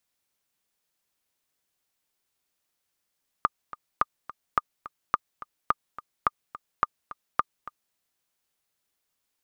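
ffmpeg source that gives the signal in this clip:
-f lavfi -i "aevalsrc='pow(10,(-7.5-17*gte(mod(t,2*60/213),60/213))/20)*sin(2*PI*1210*mod(t,60/213))*exp(-6.91*mod(t,60/213)/0.03)':d=4.5:s=44100"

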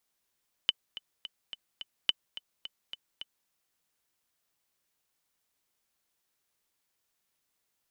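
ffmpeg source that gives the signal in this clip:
-f lavfi -i "aevalsrc='pow(10,(-10.5-16*gte(mod(t,5*60/214),60/214))/20)*sin(2*PI*3020*mod(t,60/214))*exp(-6.91*mod(t,60/214)/0.03)':d=2.8:s=44100"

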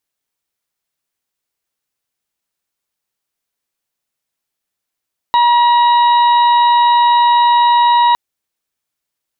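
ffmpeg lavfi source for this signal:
-f lavfi -i "aevalsrc='0.422*sin(2*PI*956*t)+0.0596*sin(2*PI*1912*t)+0.0422*sin(2*PI*2868*t)+0.0841*sin(2*PI*3824*t)':d=2.81:s=44100"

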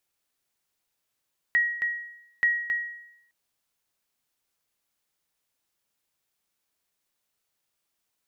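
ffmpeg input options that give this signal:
-f lavfi -i "aevalsrc='0.158*(sin(2*PI*1900*mod(t,0.88))*exp(-6.91*mod(t,0.88)/0.8)+0.473*sin(2*PI*1900*max(mod(t,0.88)-0.27,0))*exp(-6.91*max(mod(t,0.88)-0.27,0)/0.8))':d=1.76:s=44100"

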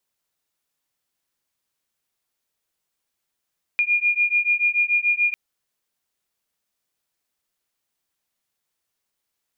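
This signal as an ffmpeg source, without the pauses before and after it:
-f lavfi -i "aevalsrc='0.0944*(sin(2*PI*2420*t)+sin(2*PI*2426.9*t))':d=1.55:s=44100"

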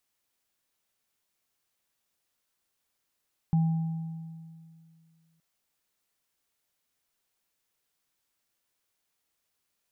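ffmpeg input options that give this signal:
-f lavfi -i "aevalsrc='0.106*pow(10,-3*t/2.3)*sin(2*PI*163*t)+0.0119*pow(10,-3*t/1.63)*sin(2*PI*802*t)':d=1.87:s=44100"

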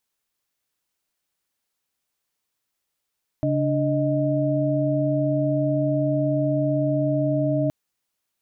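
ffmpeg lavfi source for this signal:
-f lavfi -i "aevalsrc='0.0668*(sin(2*PI*138.59*t)+sin(2*PI*293.66*t)+sin(2*PI*622.25*t))':d=4.27:s=44100"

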